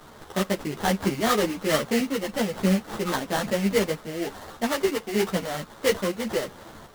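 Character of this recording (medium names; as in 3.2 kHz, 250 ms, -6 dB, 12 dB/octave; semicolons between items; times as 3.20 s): a quantiser's noise floor 8-bit, dither triangular; random-step tremolo; aliases and images of a low sample rate 2.5 kHz, jitter 20%; a shimmering, thickened sound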